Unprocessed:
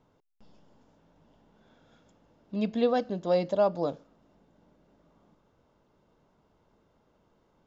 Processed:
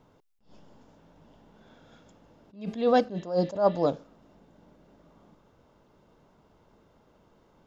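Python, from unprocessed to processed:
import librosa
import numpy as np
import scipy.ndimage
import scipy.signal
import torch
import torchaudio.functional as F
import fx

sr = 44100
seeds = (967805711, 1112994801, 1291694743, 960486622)

y = fx.dmg_buzz(x, sr, base_hz=400.0, harmonics=32, level_db=-59.0, tilt_db=-8, odd_only=False, at=(2.56, 3.04), fade=0.02)
y = fx.spec_repair(y, sr, seeds[0], start_s=3.15, length_s=0.69, low_hz=1700.0, high_hz=4100.0, source='before')
y = fx.attack_slew(y, sr, db_per_s=150.0)
y = y * librosa.db_to_amplitude(6.0)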